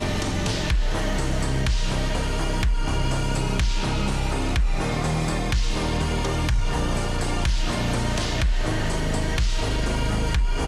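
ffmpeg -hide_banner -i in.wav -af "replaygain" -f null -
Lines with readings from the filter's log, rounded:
track_gain = +9.8 dB
track_peak = 0.152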